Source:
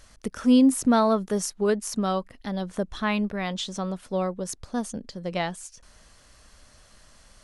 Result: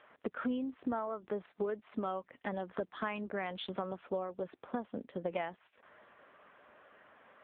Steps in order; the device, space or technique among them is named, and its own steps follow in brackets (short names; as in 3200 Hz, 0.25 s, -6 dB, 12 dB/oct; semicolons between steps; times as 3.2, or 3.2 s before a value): 0.72–1.84 Chebyshev low-pass 8200 Hz, order 3; low-pass opened by the level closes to 2200 Hz, open at -18.5 dBFS; voicemail (BPF 320–2700 Hz; compressor 8:1, threshold -37 dBFS, peak gain reduction 19 dB; gain +4.5 dB; AMR-NB 6.7 kbps 8000 Hz)